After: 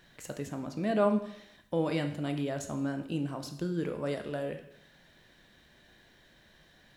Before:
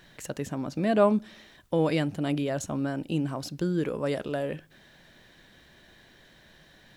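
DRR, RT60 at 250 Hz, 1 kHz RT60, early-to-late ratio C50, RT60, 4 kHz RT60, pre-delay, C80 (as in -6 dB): 6.5 dB, 0.70 s, 0.70 s, 10.0 dB, 0.70 s, 0.65 s, 7 ms, 13.0 dB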